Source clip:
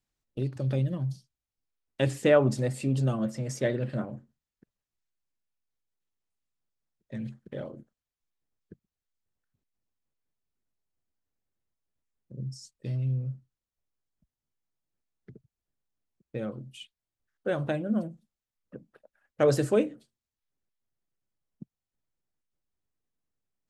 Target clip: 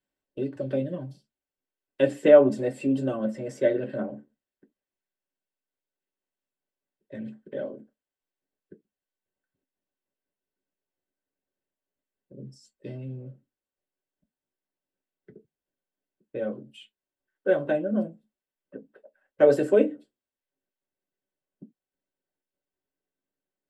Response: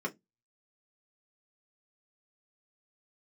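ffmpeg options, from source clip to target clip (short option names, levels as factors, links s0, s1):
-filter_complex "[1:a]atrim=start_sample=2205,atrim=end_sample=6174,asetrate=61740,aresample=44100[s0];[0:a][s0]afir=irnorm=-1:irlink=0,volume=0.841"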